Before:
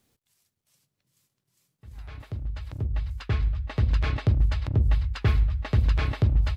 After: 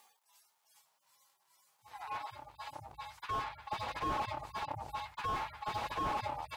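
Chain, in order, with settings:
harmonic-percussive split with one part muted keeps harmonic
high-pass with resonance 870 Hz, resonance Q 5.4
slew-rate limiting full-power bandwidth 6.6 Hz
level +10.5 dB

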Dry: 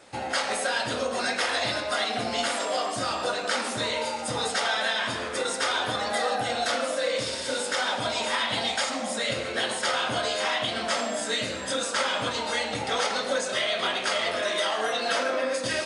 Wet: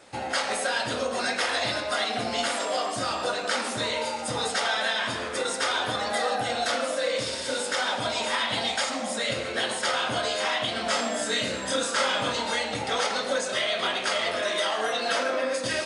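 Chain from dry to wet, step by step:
0:10.83–0:12.55: double-tracking delay 30 ms −4.5 dB

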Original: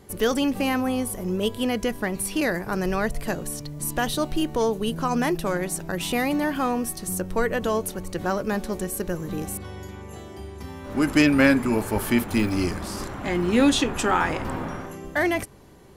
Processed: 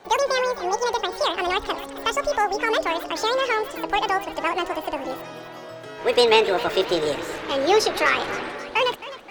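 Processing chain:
gliding playback speed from 199% → 144%
three-way crossover with the lows and the highs turned down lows −14 dB, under 310 Hz, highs −15 dB, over 7,100 Hz
feedback echo with a swinging delay time 262 ms, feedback 62%, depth 146 cents, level −15.5 dB
level +2.5 dB

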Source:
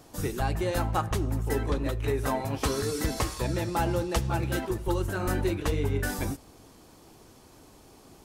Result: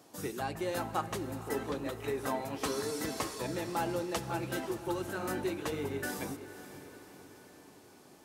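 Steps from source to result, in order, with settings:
high-pass filter 180 Hz 12 dB per octave
feedback delay with all-pass diffusion 528 ms, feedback 55%, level −13 dB
level −5 dB

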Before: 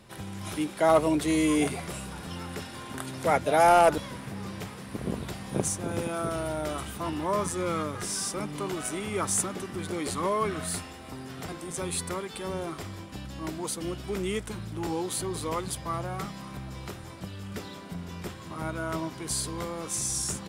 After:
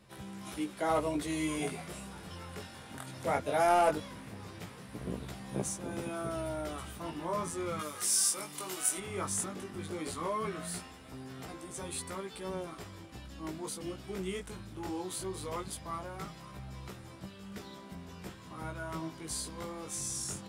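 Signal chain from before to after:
0:07.79–0:08.98: RIAA equalisation recording
chorus effect 0.17 Hz, delay 15 ms, depth 6.5 ms
level −4 dB

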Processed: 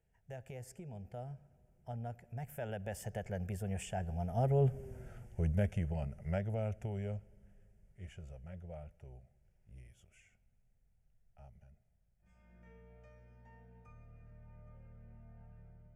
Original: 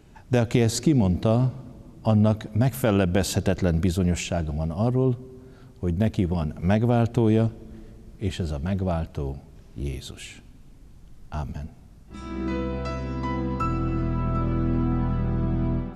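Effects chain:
fade-out on the ending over 0.74 s
source passing by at 0:04.94, 31 m/s, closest 9.4 metres
phaser with its sweep stopped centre 1,100 Hz, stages 6
level +1 dB

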